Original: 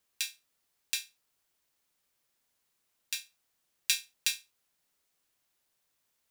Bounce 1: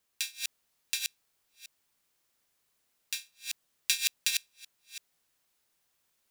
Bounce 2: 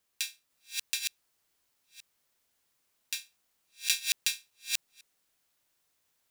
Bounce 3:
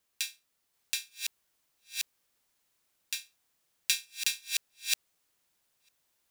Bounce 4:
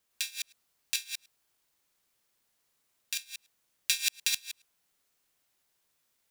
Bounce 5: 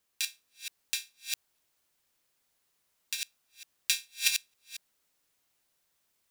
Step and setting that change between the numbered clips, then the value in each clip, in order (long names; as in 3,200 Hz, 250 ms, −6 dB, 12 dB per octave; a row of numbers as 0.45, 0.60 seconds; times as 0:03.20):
delay that plays each chunk backwards, delay time: 332, 501, 736, 105, 227 milliseconds